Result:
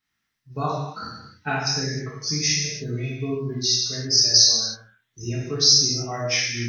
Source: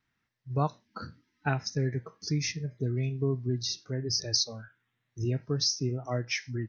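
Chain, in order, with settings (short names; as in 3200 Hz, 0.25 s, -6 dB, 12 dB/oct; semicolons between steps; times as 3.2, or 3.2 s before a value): high shelf 2100 Hz +11 dB; non-linear reverb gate 0.34 s falling, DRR -7 dB; spectral noise reduction 6 dB; gain -3.5 dB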